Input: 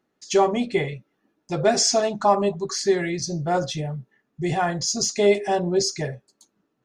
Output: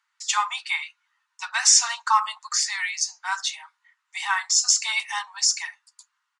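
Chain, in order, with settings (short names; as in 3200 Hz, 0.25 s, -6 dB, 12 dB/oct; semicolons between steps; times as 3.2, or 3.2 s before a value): steep high-pass 880 Hz 72 dB/oct; wide varispeed 1.07×; downsampling 22050 Hz; gain +5.5 dB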